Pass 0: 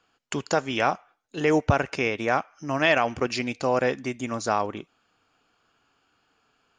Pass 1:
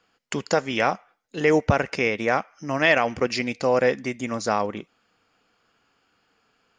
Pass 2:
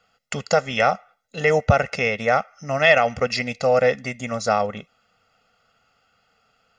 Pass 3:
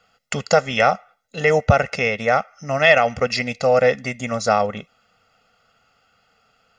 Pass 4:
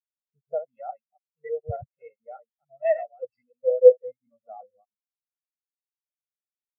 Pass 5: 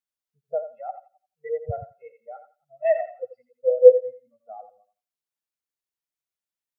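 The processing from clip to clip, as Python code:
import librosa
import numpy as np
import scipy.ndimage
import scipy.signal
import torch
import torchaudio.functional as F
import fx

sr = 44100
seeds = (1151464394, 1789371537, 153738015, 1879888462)

y1 = fx.graphic_eq_31(x, sr, hz=(200, 500, 2000, 5000), db=(6, 5, 6, 4))
y2 = y1 + 0.87 * np.pad(y1, (int(1.5 * sr / 1000.0), 0))[:len(y1)]
y3 = fx.rider(y2, sr, range_db=3, speed_s=2.0)
y3 = F.gain(torch.from_numpy(y3), 1.5).numpy()
y4 = fx.reverse_delay(y3, sr, ms=147, wet_db=-3.5)
y4 = fx.spectral_expand(y4, sr, expansion=4.0)
y4 = F.gain(torch.from_numpy(y4), -3.0).numpy()
y5 = fx.echo_thinned(y4, sr, ms=85, feedback_pct=23, hz=700.0, wet_db=-8.0)
y5 = F.gain(torch.from_numpy(y5), 1.5).numpy()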